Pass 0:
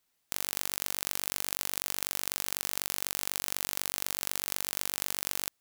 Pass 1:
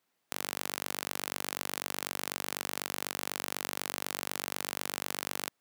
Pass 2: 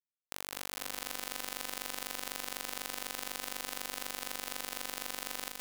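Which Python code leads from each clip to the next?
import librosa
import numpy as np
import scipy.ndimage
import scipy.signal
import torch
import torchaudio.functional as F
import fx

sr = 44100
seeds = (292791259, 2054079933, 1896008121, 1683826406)

y1 = scipy.signal.sosfilt(scipy.signal.butter(2, 150.0, 'highpass', fs=sr, output='sos'), x)
y1 = fx.high_shelf(y1, sr, hz=2900.0, db=-11.0)
y1 = y1 * librosa.db_to_amplitude(5.0)
y2 = fx.echo_heads(y1, sr, ms=204, heads='first and second', feedback_pct=46, wet_db=-6.5)
y2 = np.sign(y2) * np.maximum(np.abs(y2) - 10.0 ** (-41.0 / 20.0), 0.0)
y2 = y2 * librosa.db_to_amplitude(-4.5)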